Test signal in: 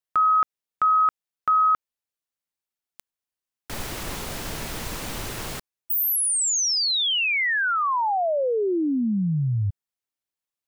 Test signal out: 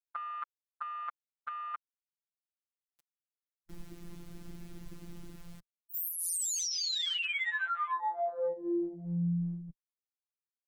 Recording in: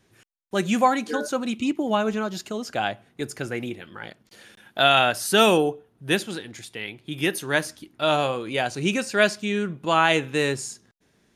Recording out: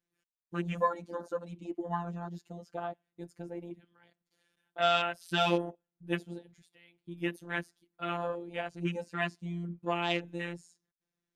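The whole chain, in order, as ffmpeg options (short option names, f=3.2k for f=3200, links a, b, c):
-af "afwtdn=0.0447,afftfilt=real='hypot(re,im)*cos(PI*b)':imag='0':win_size=1024:overlap=0.75,volume=-6.5dB"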